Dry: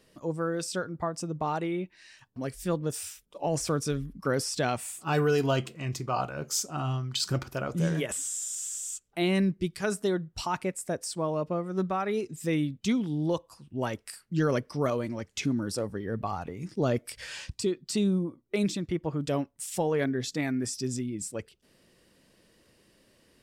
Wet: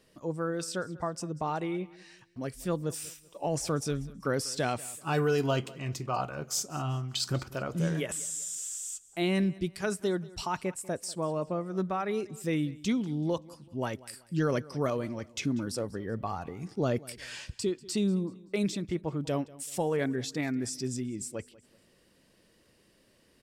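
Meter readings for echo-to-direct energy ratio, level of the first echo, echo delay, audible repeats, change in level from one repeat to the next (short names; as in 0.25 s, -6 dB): -20.5 dB, -21.0 dB, 0.191 s, 2, -9.0 dB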